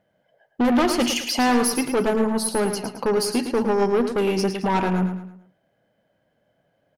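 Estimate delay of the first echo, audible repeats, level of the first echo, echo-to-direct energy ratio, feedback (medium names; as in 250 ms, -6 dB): 109 ms, 4, -8.5 dB, -8.0 dB, 39%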